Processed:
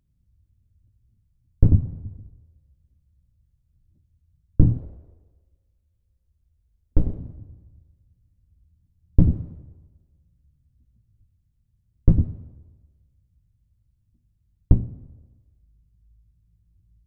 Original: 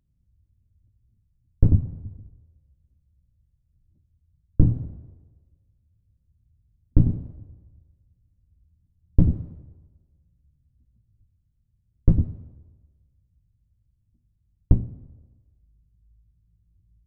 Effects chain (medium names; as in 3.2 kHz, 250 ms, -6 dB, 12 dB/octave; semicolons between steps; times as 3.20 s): 4.79–7.19 s: graphic EQ 125/250/500 Hz -12/-6/+5 dB; trim +1.5 dB